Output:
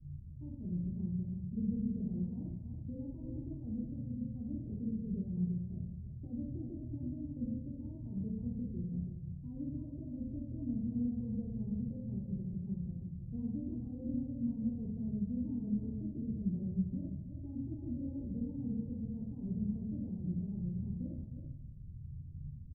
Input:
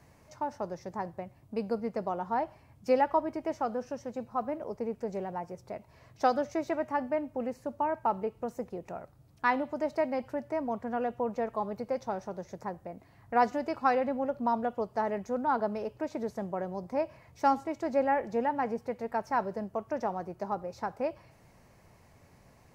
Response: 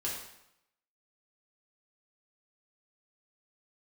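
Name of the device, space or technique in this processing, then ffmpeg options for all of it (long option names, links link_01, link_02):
club heard from the street: -filter_complex "[0:a]aecho=1:1:50|326:0.15|0.355,alimiter=limit=-22.5dB:level=0:latency=1:release=33,lowpass=frequency=160:width=0.5412,lowpass=frequency=160:width=1.3066[link_01];[1:a]atrim=start_sample=2205[link_02];[link_01][link_02]afir=irnorm=-1:irlink=0,volume=11.5dB"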